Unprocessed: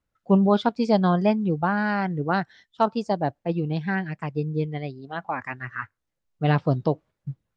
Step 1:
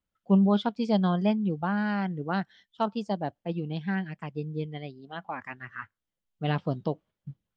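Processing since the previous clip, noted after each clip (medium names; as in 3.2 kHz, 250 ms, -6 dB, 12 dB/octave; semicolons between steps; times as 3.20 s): graphic EQ with 31 bands 125 Hz -4 dB, 200 Hz +6 dB, 3.15 kHz +8 dB; trim -7 dB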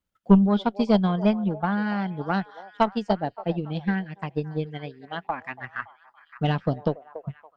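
repeats whose band climbs or falls 283 ms, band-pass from 620 Hz, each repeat 0.7 oct, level -10 dB; transient shaper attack +7 dB, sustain -3 dB; Chebyshev shaper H 2 -10 dB, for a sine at -5.5 dBFS; trim +2 dB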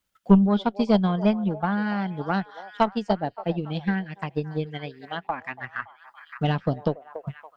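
tape noise reduction on one side only encoder only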